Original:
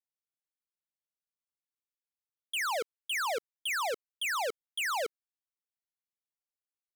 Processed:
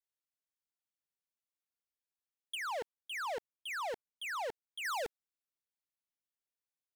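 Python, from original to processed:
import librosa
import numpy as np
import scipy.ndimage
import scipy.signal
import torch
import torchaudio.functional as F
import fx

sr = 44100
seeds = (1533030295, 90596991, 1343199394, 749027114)

y = fx.high_shelf(x, sr, hz=2800.0, db=-8.5, at=(2.55, 4.85))
y = fx.doppler_dist(y, sr, depth_ms=0.58)
y = y * librosa.db_to_amplitude(-4.5)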